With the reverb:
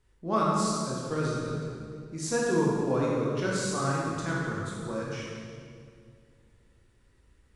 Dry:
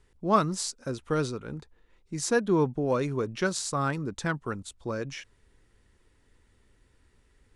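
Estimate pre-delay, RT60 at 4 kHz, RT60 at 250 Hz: 17 ms, 1.7 s, 2.8 s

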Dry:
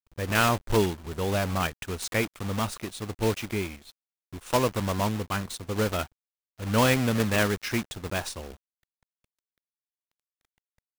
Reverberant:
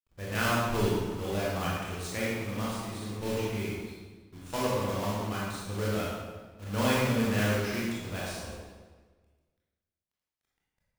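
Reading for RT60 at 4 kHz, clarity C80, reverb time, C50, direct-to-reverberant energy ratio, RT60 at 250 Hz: 1.1 s, 0.5 dB, 1.4 s, -2.5 dB, -6.5 dB, 1.5 s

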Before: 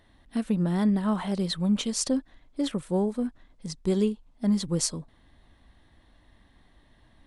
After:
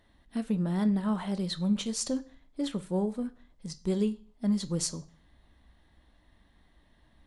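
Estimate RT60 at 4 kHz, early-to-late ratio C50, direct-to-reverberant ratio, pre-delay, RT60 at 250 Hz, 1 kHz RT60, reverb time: 0.45 s, 19.5 dB, 11.5 dB, 3 ms, 0.45 s, 0.45 s, 0.40 s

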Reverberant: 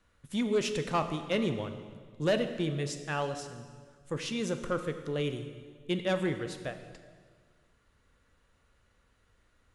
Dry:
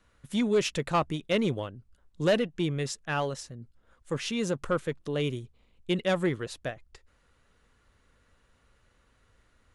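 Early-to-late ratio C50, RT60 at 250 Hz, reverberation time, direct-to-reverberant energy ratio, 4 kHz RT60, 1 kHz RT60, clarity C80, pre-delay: 9.5 dB, 1.9 s, 1.7 s, 8.0 dB, 1.5 s, 1.5 s, 10.5 dB, 15 ms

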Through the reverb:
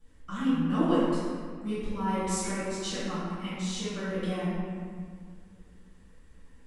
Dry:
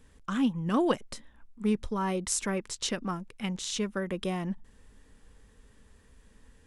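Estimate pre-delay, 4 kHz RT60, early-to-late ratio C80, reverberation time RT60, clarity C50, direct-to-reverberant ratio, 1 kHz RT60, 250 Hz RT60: 3 ms, 1.2 s, -1.5 dB, 1.9 s, -4.0 dB, -13.5 dB, 1.9 s, 2.7 s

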